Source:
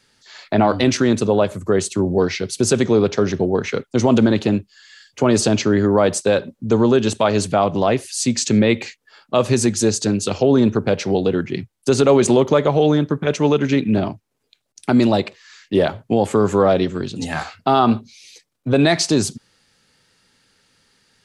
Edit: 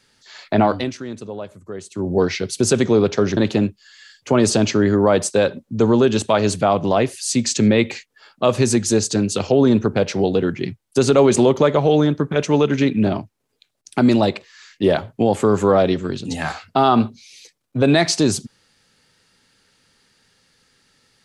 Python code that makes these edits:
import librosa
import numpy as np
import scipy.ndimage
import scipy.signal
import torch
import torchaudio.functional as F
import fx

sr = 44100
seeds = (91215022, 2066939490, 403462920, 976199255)

y = fx.edit(x, sr, fx.fade_down_up(start_s=0.64, length_s=1.54, db=-14.5, fade_s=0.29),
    fx.cut(start_s=3.37, length_s=0.91), tone=tone)